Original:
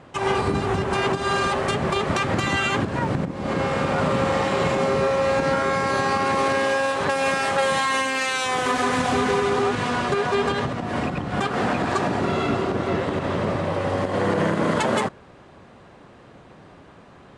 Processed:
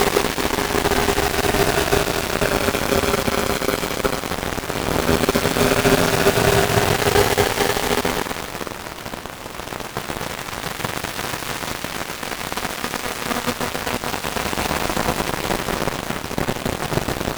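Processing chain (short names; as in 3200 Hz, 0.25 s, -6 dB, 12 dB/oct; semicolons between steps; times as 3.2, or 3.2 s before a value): decimation with a swept rate 32×, swing 100% 1.7 Hz; Paulstretch 26×, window 0.10 s, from 9.4; added harmonics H 7 -14 dB, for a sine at -7.5 dBFS; gain +5 dB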